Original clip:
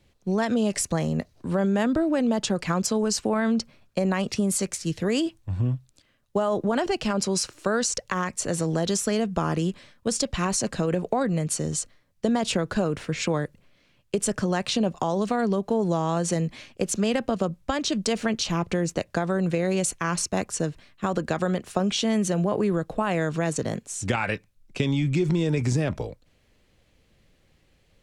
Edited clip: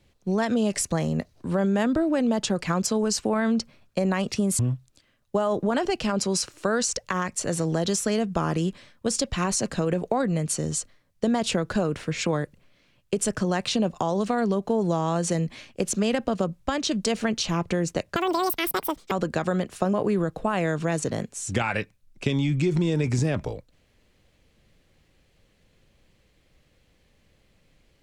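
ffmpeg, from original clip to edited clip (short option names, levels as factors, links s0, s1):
-filter_complex "[0:a]asplit=5[s0][s1][s2][s3][s4];[s0]atrim=end=4.592[s5];[s1]atrim=start=5.598:end=19.174[s6];[s2]atrim=start=19.17:end=21.06,asetpts=PTS-STARTPTS,asetrate=87318,aresample=44100,atrim=end_sample=42095,asetpts=PTS-STARTPTS[s7];[s3]atrim=start=21.056:end=21.882[s8];[s4]atrim=start=22.468[s9];[s5][s6]acrossfade=d=0.004:c1=hsin:c2=hsin[s10];[s10][s7]acrossfade=d=0.004:c1=hsin:c2=hsin[s11];[s11][s8]acrossfade=d=0.004:c1=hsin:c2=hsin[s12];[s12][s9]acrossfade=d=0.004:c1=hsin:c2=hsin"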